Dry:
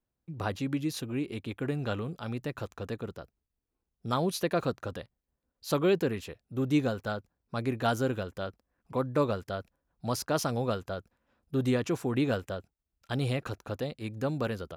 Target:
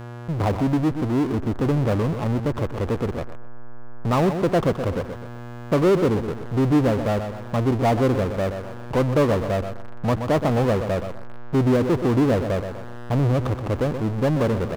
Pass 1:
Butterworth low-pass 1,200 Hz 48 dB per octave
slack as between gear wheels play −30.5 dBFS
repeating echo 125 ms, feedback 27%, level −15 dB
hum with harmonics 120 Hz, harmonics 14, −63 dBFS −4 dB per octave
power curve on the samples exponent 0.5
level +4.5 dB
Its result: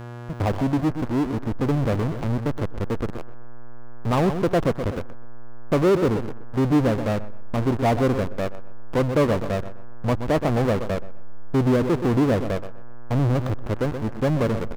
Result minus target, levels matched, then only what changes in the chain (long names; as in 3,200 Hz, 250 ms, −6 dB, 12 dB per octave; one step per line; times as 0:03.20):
slack as between gear wheels: distortion +9 dB
change: slack as between gear wheels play −39.5 dBFS